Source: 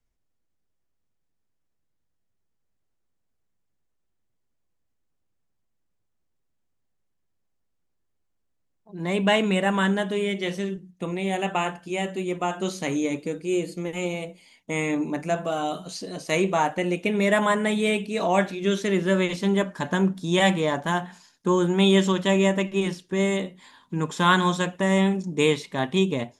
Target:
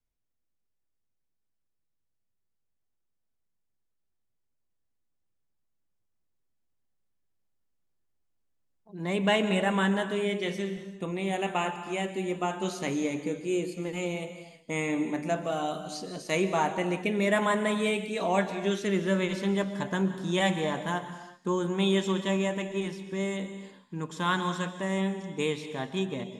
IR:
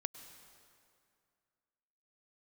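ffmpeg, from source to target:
-filter_complex "[0:a]dynaudnorm=f=580:g=21:m=1.78[s0];[1:a]atrim=start_sample=2205,afade=t=out:st=0.37:d=0.01,atrim=end_sample=16758,asetrate=37044,aresample=44100[s1];[s0][s1]afir=irnorm=-1:irlink=0,volume=0.447"

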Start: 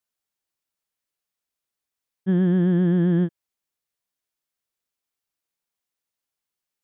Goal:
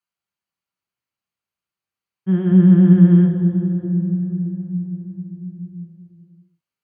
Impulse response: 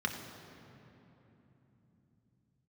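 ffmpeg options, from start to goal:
-filter_complex "[0:a]asettb=1/sr,asplit=3[s0][s1][s2];[s0]atrim=end=2.514[s3];[s1]atrim=start=2.51:end=2.93,asetpts=PTS-STARTPTS,afade=t=in:d=0.004:c=qsin,afade=t=out:st=0.416:d=0.004:c=qsin,lowshelf=f=220:g=7[s4];[s2]atrim=start=2.926[s5];[s3][s4]acrossfade=d=0.004:c1=hsin:c2=qsin[s6];[s6][s5]acrossfade=d=0.004:c1=qsin:c2=hsin[s7];[1:a]atrim=start_sample=2205,asetrate=34839,aresample=44100[s8];[s7][s8]afir=irnorm=-1:irlink=0,volume=0.473"

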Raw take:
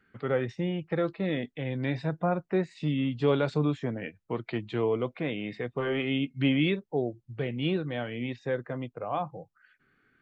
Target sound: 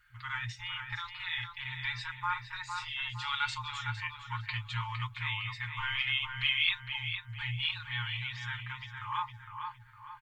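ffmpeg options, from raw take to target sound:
-filter_complex "[0:a]lowshelf=f=120:g=10.5,asplit=2[s0][s1];[s1]adelay=459,lowpass=f=2600:p=1,volume=0.562,asplit=2[s2][s3];[s3]adelay=459,lowpass=f=2600:p=1,volume=0.43,asplit=2[s4][s5];[s5]adelay=459,lowpass=f=2600:p=1,volume=0.43,asplit=2[s6][s7];[s7]adelay=459,lowpass=f=2600:p=1,volume=0.43,asplit=2[s8][s9];[s9]adelay=459,lowpass=f=2600:p=1,volume=0.43[s10];[s2][s4][s6][s8][s10]amix=inputs=5:normalize=0[s11];[s0][s11]amix=inputs=2:normalize=0,afftfilt=real='re*(1-between(b*sr/4096,120,840))':imag='im*(1-between(b*sr/4096,120,840))':win_size=4096:overlap=0.75,highshelf=f=3500:g=11.5,aecho=1:1:5.6:0.75,volume=0.841"

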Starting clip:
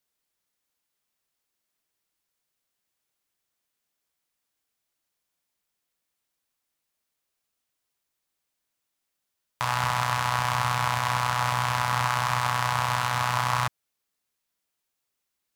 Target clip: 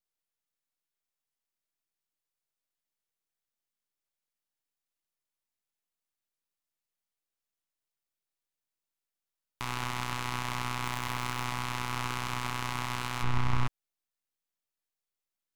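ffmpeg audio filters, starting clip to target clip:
-filter_complex "[0:a]aeval=exprs='max(val(0),0)':c=same,asettb=1/sr,asplit=3[s0][s1][s2];[s0]atrim=end=10.844[s3];[s1]atrim=start=10.84:end=11.45,asetpts=PTS-STARTPTS,afade=t=in:d=0.004:c=qsin,afade=t=out:st=0.606:d=0.004:c=qsin,acrusher=bits=4:mode=log:mix=0:aa=0.000001[s4];[s2]atrim=start=11.446[s5];[s3][s4]acrossfade=d=0.004:c1=hsin:c2=qsin[s6];[s6][s5]acrossfade=d=0.004:c1=qsin:c2=hsin,asplit=3[s7][s8][s9];[s7]afade=t=out:st=13.22:d=0.02[s10];[s8]aemphasis=mode=reproduction:type=bsi,afade=t=in:st=13.22:d=0.02,afade=t=out:st=13.66:d=0.02[s11];[s9]afade=t=in:st=13.66:d=0.02[s12];[s10][s11][s12]amix=inputs=3:normalize=0,volume=0.473"

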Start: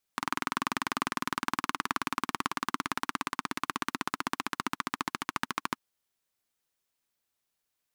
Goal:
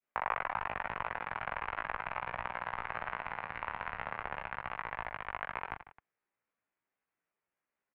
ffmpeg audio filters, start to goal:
-filter_complex "[0:a]adynamicequalizer=threshold=0.00562:dfrequency=1100:dqfactor=1.3:tfrequency=1100:tqfactor=1.3:attack=5:release=100:ratio=0.375:range=3.5:mode=cutabove:tftype=bell,acontrast=60,highpass=f=420:t=q:w=0.5412,highpass=f=420:t=q:w=1.307,lowpass=f=2300:t=q:w=0.5176,lowpass=f=2300:t=q:w=0.7071,lowpass=f=2300:t=q:w=1.932,afreqshift=-280,asplit=2[s0][s1];[s1]aecho=0:1:20|50|95|162.5|263.8:0.631|0.398|0.251|0.158|0.1[s2];[s0][s2]amix=inputs=2:normalize=0,asetrate=50951,aresample=44100,atempo=0.865537,volume=0.447"

